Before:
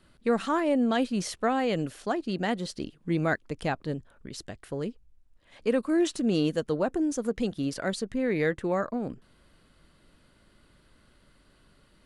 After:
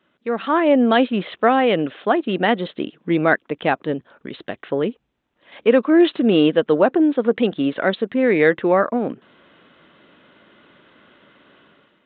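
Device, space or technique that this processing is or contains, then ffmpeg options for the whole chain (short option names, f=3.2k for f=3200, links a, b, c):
Bluetooth headset: -af "highpass=250,dynaudnorm=f=140:g=7:m=13.5dB,aresample=8000,aresample=44100" -ar 16000 -c:a sbc -b:a 64k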